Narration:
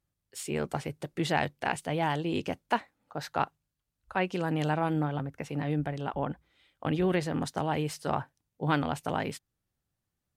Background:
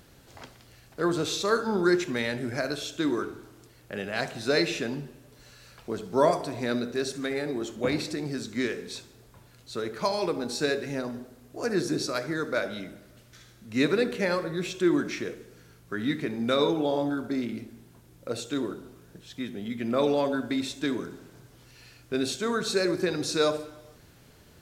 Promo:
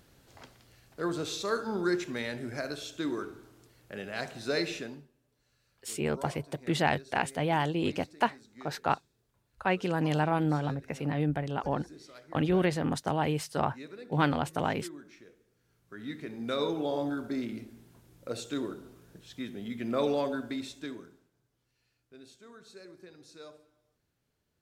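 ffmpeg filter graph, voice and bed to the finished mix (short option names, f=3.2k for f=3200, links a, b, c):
-filter_complex "[0:a]adelay=5500,volume=1dB[a];[1:a]volume=11.5dB,afade=t=out:st=4.73:d=0.35:silence=0.16788,afade=t=in:st=15.58:d=1.49:silence=0.133352,afade=t=out:st=20.17:d=1.13:silence=0.0944061[b];[a][b]amix=inputs=2:normalize=0"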